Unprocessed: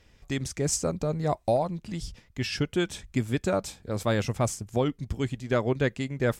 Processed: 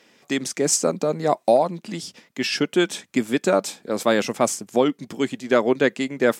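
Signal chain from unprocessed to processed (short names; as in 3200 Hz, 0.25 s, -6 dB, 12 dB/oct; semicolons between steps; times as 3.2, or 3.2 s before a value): HPF 210 Hz 24 dB/oct; gain +8 dB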